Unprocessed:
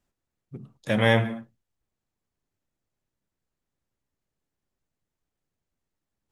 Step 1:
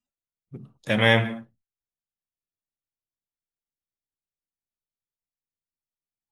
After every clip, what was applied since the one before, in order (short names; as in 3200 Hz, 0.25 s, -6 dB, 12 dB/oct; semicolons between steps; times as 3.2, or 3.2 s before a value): spectral noise reduction 19 dB; dynamic EQ 2700 Hz, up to +6 dB, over -38 dBFS, Q 0.83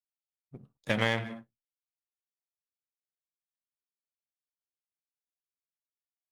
compressor 6:1, threshold -22 dBFS, peak gain reduction 9.5 dB; power-law curve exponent 1.4; gain +1.5 dB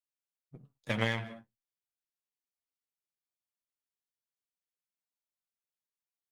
flange 0.38 Hz, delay 3.1 ms, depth 7.5 ms, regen +42%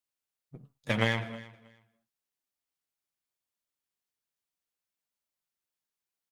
feedback echo 0.318 s, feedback 19%, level -19.5 dB; gain +3.5 dB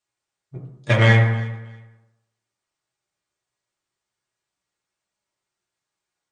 brick-wall FIR low-pass 9200 Hz; reverb RT60 0.90 s, pre-delay 4 ms, DRR -3.5 dB; gain +6 dB